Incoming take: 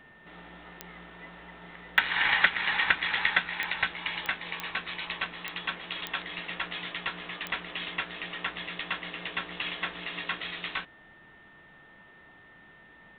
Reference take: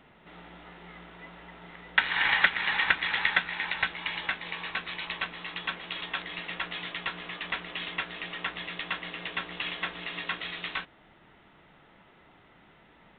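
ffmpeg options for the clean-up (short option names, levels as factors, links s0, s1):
-af "adeclick=t=4,bandreject=f=1800:w=30"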